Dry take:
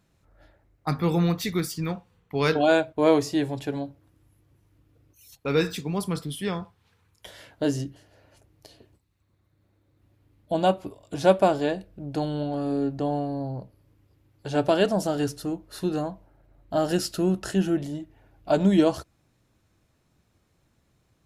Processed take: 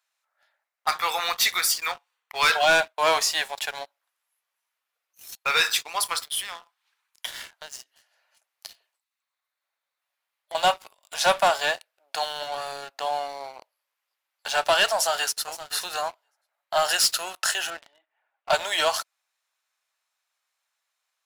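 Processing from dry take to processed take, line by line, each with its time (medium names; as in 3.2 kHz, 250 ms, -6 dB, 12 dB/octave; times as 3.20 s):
6.28–10.55 s: compression 10:1, threshold -34 dBFS
14.95–15.45 s: echo throw 520 ms, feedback 10%, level -13 dB
17.70–18.50 s: distance through air 420 m
whole clip: Bessel high-pass 1.2 kHz, order 6; waveshaping leveller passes 3; trim +2.5 dB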